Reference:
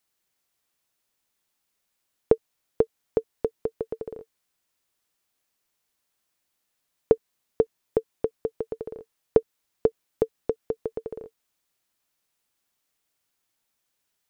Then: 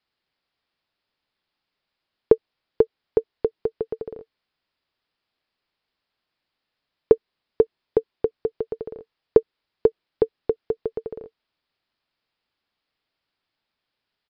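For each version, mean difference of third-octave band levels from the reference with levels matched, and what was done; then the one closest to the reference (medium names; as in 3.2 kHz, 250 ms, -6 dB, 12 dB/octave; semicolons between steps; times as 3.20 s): 2.0 dB: resampled via 11.025 kHz; dynamic bell 390 Hz, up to +5 dB, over -34 dBFS, Q 2.9; trim +1.5 dB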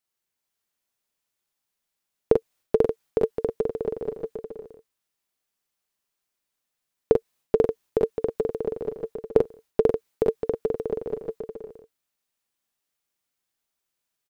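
6.0 dB: gate -56 dBFS, range -8 dB; multi-tap echo 42/50/431/436/580 ms -4/-13/-4/-7/-9 dB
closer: first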